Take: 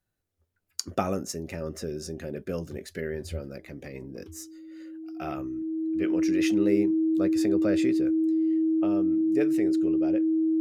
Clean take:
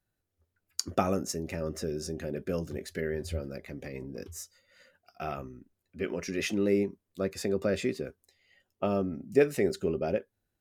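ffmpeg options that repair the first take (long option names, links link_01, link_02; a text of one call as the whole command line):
ffmpeg -i in.wav -af "bandreject=frequency=320:width=30,asetnsamples=nb_out_samples=441:pad=0,asendcmd='8.57 volume volume 5.5dB',volume=0dB" out.wav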